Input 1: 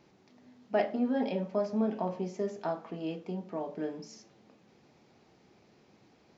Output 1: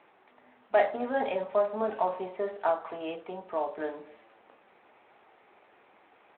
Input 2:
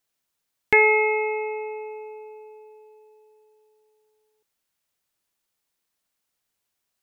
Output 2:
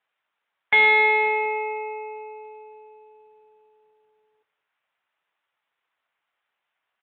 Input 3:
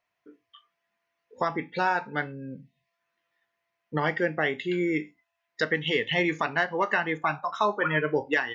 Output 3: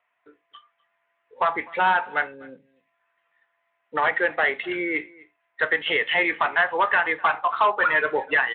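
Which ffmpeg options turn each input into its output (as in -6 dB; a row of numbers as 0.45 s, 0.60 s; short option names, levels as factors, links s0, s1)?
-filter_complex "[0:a]highpass=730,lowpass=2300,acontrast=82,aresample=11025,asoftclip=type=tanh:threshold=0.15,aresample=44100,asplit=2[s0][s1];[s1]adelay=250.7,volume=0.0708,highshelf=f=4000:g=-5.64[s2];[s0][s2]amix=inputs=2:normalize=0,volume=1.5" -ar 8000 -c:a libspeex -b:a 18k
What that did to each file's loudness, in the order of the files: +2.5 LU, +2.0 LU, +5.0 LU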